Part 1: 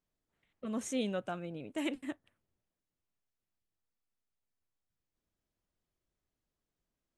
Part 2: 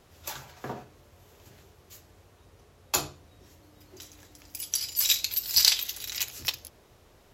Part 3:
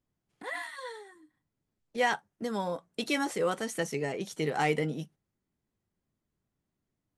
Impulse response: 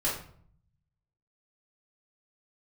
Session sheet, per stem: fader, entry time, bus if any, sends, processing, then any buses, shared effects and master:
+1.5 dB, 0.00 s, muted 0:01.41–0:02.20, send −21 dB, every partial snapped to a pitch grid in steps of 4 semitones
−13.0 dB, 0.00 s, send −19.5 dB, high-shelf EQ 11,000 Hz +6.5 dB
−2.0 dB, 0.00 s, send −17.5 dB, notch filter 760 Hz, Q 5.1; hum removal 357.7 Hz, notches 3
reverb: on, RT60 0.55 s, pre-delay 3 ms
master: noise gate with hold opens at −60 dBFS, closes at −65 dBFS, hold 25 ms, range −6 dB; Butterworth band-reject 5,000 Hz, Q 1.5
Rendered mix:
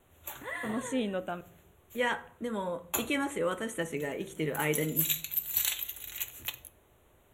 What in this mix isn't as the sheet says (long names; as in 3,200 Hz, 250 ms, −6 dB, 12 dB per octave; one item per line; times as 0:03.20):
stem 1: missing every partial snapped to a pitch grid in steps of 4 semitones
stem 2 −13.0 dB → −6.5 dB